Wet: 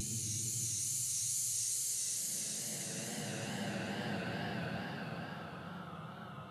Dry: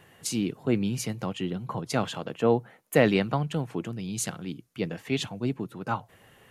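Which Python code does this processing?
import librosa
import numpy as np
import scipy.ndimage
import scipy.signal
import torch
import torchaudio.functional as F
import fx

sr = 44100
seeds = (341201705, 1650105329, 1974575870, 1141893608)

y = fx.paulstretch(x, sr, seeds[0], factor=39.0, window_s=0.1, from_s=4.18)
y = fx.vibrato(y, sr, rate_hz=2.3, depth_cents=71.0)
y = y * 10.0 ** (-7.5 / 20.0)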